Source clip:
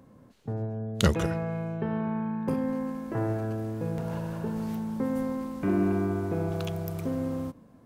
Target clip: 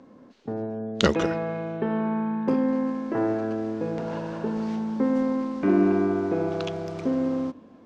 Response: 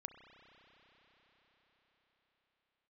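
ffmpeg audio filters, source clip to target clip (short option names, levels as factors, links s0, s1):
-filter_complex "[0:a]lowpass=f=6100:w=0.5412,lowpass=f=6100:w=1.3066,lowshelf=f=180:t=q:w=1.5:g=-10.5,asplit=2[s0][s1];[1:a]atrim=start_sample=2205[s2];[s1][s2]afir=irnorm=-1:irlink=0,volume=0.266[s3];[s0][s3]amix=inputs=2:normalize=0,volume=1.5"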